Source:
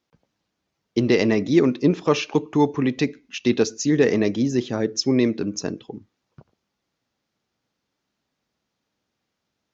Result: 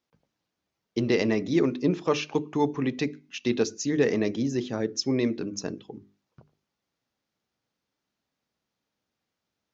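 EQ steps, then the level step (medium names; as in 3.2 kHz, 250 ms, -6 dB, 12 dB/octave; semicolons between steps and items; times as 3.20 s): hum notches 50/100/150/200/250/300/350/400 Hz; -5.0 dB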